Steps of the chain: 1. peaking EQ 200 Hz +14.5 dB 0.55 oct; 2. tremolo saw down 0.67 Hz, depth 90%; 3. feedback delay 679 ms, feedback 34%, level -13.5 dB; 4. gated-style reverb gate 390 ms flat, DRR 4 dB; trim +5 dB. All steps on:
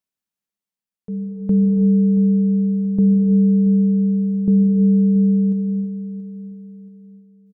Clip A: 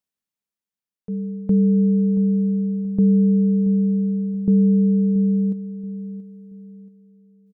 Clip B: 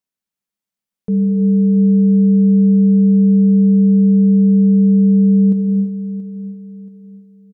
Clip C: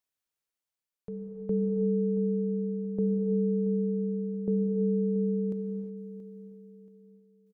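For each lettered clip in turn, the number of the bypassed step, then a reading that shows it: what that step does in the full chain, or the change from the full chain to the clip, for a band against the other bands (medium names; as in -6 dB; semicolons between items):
4, loudness change -2.5 LU; 2, momentary loudness spread change -4 LU; 1, crest factor change +2.0 dB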